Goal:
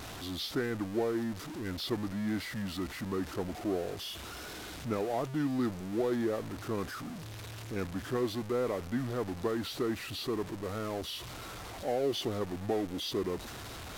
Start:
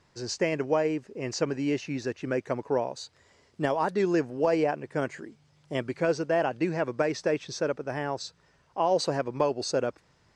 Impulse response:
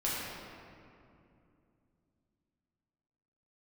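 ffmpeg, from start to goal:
-af "aeval=exprs='val(0)+0.5*0.0316*sgn(val(0))':channel_layout=same,asetrate=32667,aresample=44100,volume=-8dB"

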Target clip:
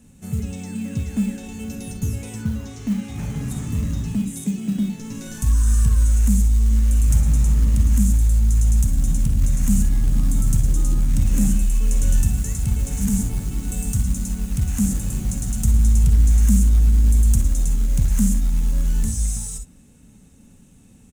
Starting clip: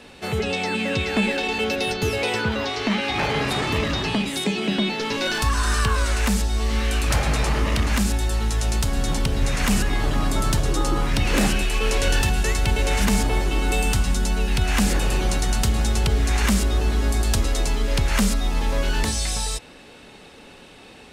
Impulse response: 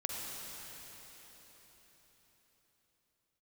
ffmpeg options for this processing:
-filter_complex "[0:a]firequalizer=gain_entry='entry(210,0);entry(370,-19);entry(650,-22);entry(4600,-24);entry(6500,-3)':delay=0.05:min_phase=1,acrusher=bits=7:mode=log:mix=0:aa=0.000001[link_01];[1:a]atrim=start_sample=2205,atrim=end_sample=3087[link_02];[link_01][link_02]afir=irnorm=-1:irlink=0,volume=4dB"

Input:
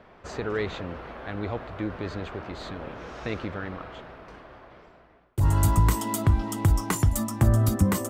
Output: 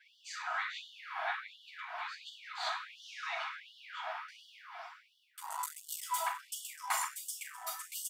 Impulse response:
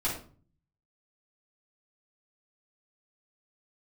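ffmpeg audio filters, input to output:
-filter_complex "[0:a]acompressor=threshold=-35dB:ratio=2.5,asettb=1/sr,asplit=3[link_01][link_02][link_03];[link_01]atrim=end=4.284[link_04];[link_02]atrim=start=4.28:end=6.1,asetpts=PTS-STARTPTS,afade=type=in:duration=0.004:curve=qsin,afade=type=out:start_time=1.816:duration=0.004:curve=qsin,bass=frequency=250:gain=8,treble=frequency=4000:gain=4[link_05];[link_03]atrim=start=6.096[link_06];[link_04][link_05]acrossfade=duration=0.004:curve1=hsin:curve2=qsin[link_07];[link_07][link_06]acrossfade=duration=0.004:curve1=qsin:curve2=hsin,asplit=5[link_08][link_09][link_10][link_11][link_12];[link_09]adelay=101,afreqshift=-45,volume=-16dB[link_13];[link_10]adelay=202,afreqshift=-90,volume=-23.5dB[link_14];[link_11]adelay=303,afreqshift=-135,volume=-31.1dB[link_15];[link_12]adelay=404,afreqshift=-180,volume=-38.6dB[link_16];[link_08][link_13][link_14][link_15][link_16]amix=inputs=5:normalize=0,acrossover=split=720[link_17][link_18];[link_17]aeval=exprs='val(0)*(1-0.5/2+0.5/2*cos(2*PI*2.8*n/s))':channel_layout=same[link_19];[link_18]aeval=exprs='val(0)*(1-0.5/2-0.5/2*cos(2*PI*2.8*n/s))':channel_layout=same[link_20];[link_19][link_20]amix=inputs=2:normalize=0[link_21];[1:a]atrim=start_sample=2205[link_22];[link_21][link_22]afir=irnorm=-1:irlink=0,asoftclip=type=tanh:threshold=-16.5dB,afftfilt=real='re*gte(b*sr/1024,630*pow(2900/630,0.5+0.5*sin(2*PI*1.4*pts/sr)))':imag='im*gte(b*sr/1024,630*pow(2900/630,0.5+0.5*sin(2*PI*1.4*pts/sr)))':win_size=1024:overlap=0.75,volume=1.5dB"

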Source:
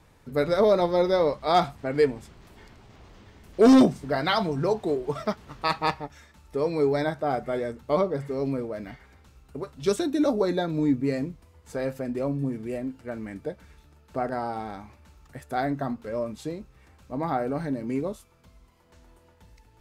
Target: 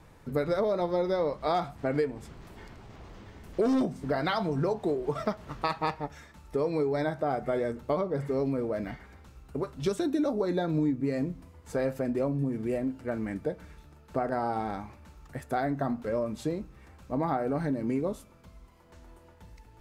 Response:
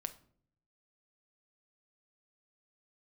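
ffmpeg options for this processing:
-filter_complex "[0:a]acompressor=threshold=-28dB:ratio=6,asplit=2[link_01][link_02];[1:a]atrim=start_sample=2205,lowpass=2500[link_03];[link_02][link_03]afir=irnorm=-1:irlink=0,volume=-5dB[link_04];[link_01][link_04]amix=inputs=2:normalize=0"

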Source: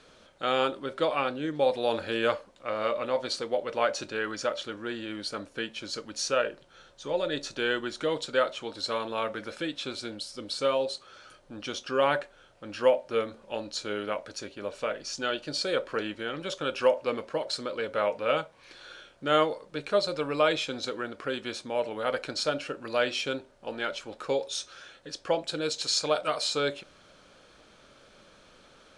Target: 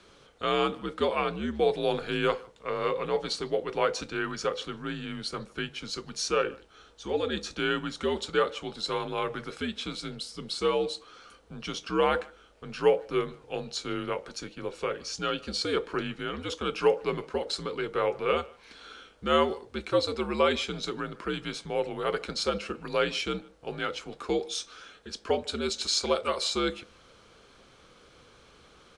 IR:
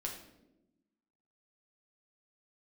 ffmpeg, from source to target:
-filter_complex "[0:a]asplit=2[link_01][link_02];[link_02]adelay=150,highpass=300,lowpass=3400,asoftclip=type=hard:threshold=-17dB,volume=-23dB[link_03];[link_01][link_03]amix=inputs=2:normalize=0,afreqshift=-78"

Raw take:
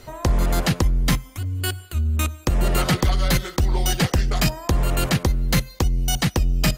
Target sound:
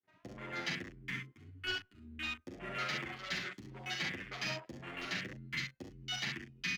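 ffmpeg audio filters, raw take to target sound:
ffmpeg -i in.wav -filter_complex "[0:a]aresample=16000,aeval=exprs='sgn(val(0))*max(abs(val(0))-0.00237,0)':channel_layout=same,aresample=44100,adynamicsmooth=sensitivity=5.5:basefreq=780,equalizer=frequency=500:width_type=o:width=1:gain=-11,equalizer=frequency=1000:width_type=o:width=1:gain=-8,equalizer=frequency=2000:width_type=o:width=1:gain=6,areverse,acompressor=threshold=-32dB:ratio=6,areverse,aecho=1:1:46|67:0.335|0.473,agate=range=-33dB:threshold=-44dB:ratio=3:detection=peak,highpass=350,asplit=2[link_01][link_02];[link_02]adelay=38,volume=-9dB[link_03];[link_01][link_03]amix=inputs=2:normalize=0,asoftclip=type=hard:threshold=-33.5dB,afwtdn=0.00562,asplit=2[link_04][link_05];[link_05]adelay=8.5,afreqshift=1.2[link_06];[link_04][link_06]amix=inputs=2:normalize=1,volume=5.5dB" out.wav

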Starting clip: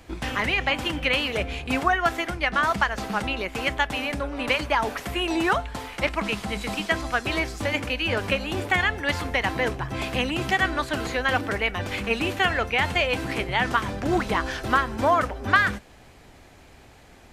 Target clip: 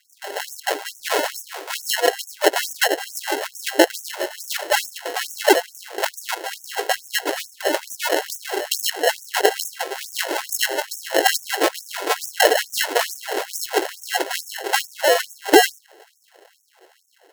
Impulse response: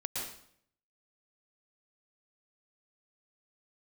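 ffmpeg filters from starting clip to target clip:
-af "highpass=75,dynaudnorm=framelen=220:gausssize=9:maxgain=11.5dB,equalizer=frequency=160:width_type=o:width=0.33:gain=8,equalizer=frequency=315:width_type=o:width=0.33:gain=-7,equalizer=frequency=800:width_type=o:width=0.33:gain=9,equalizer=frequency=1600:width_type=o:width=0.33:gain=8,equalizer=frequency=2500:width_type=o:width=0.33:gain=12,equalizer=frequency=5000:width_type=o:width=0.33:gain=-9,equalizer=frequency=12500:width_type=o:width=0.33:gain=-3,acrusher=samples=37:mix=1:aa=0.000001,afftfilt=real='re*gte(b*sr/1024,290*pow(5700/290,0.5+0.5*sin(2*PI*2.3*pts/sr)))':imag='im*gte(b*sr/1024,290*pow(5700/290,0.5+0.5*sin(2*PI*2.3*pts/sr)))':win_size=1024:overlap=0.75,volume=-2dB"

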